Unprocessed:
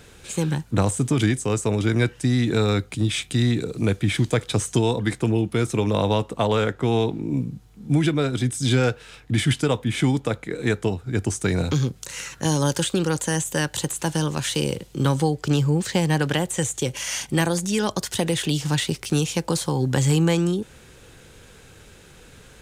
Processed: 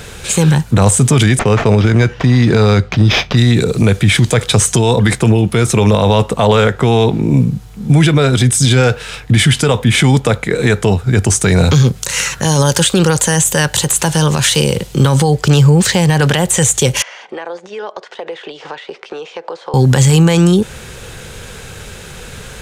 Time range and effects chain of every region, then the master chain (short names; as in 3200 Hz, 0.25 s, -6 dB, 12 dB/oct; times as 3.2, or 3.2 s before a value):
1.39–3.37 sample-rate reducer 8600 Hz + air absorption 130 m
17.02–19.74 HPF 400 Hz 24 dB/oct + compressor 8:1, threshold -33 dBFS + tape spacing loss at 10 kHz 42 dB
whole clip: bell 300 Hz -9 dB 0.42 oct; maximiser +18 dB; gain -1 dB